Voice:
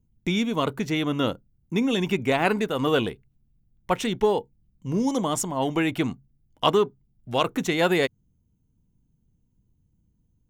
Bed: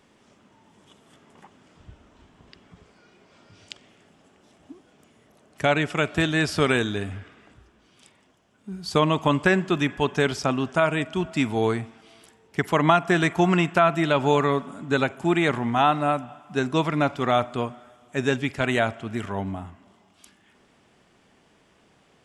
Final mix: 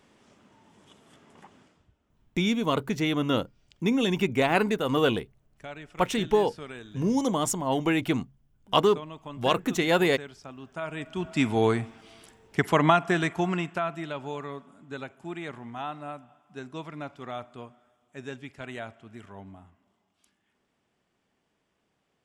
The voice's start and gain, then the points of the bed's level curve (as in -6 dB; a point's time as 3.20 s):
2.10 s, -1.0 dB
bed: 1.61 s -1.5 dB
1.93 s -20 dB
10.53 s -20 dB
11.46 s 0 dB
12.70 s 0 dB
14.32 s -15.5 dB